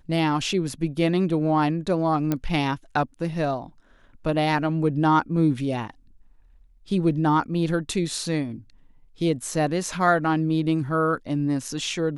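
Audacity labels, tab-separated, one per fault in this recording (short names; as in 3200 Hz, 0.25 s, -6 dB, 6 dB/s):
2.320000	2.320000	pop -11 dBFS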